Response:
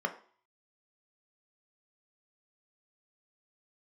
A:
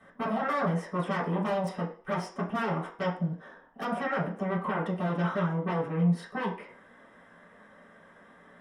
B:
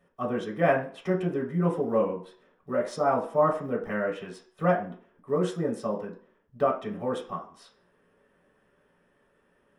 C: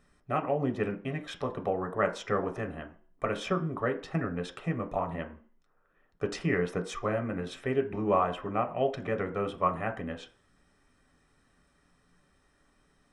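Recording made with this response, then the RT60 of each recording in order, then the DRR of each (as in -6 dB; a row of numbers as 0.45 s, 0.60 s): C; 0.50 s, 0.50 s, 0.50 s; -8.0 dB, -3.5 dB, 4.5 dB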